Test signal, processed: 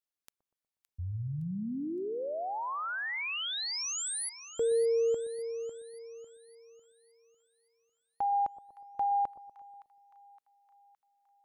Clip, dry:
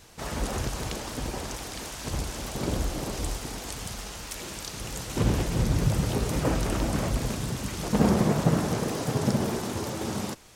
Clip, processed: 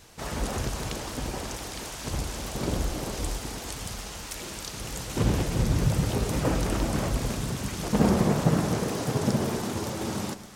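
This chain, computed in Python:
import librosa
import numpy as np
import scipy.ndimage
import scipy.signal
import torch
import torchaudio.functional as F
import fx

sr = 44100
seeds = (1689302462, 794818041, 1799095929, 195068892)

y = fx.echo_split(x, sr, split_hz=1000.0, low_ms=121, high_ms=565, feedback_pct=52, wet_db=-14)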